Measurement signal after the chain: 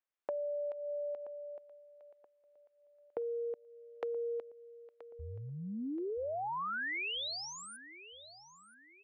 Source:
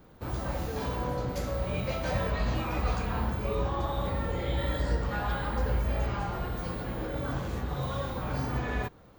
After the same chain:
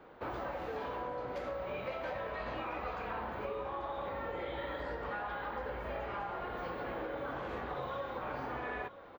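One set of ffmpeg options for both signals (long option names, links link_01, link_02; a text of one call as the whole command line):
ffmpeg -i in.wav -filter_complex "[0:a]acrossover=split=330 3200:gain=0.141 1 0.0631[link_01][link_02][link_03];[link_01][link_02][link_03]amix=inputs=3:normalize=0,acompressor=threshold=-41dB:ratio=10,aecho=1:1:977|1954|2931:0.158|0.0602|0.0229,volume=5dB" out.wav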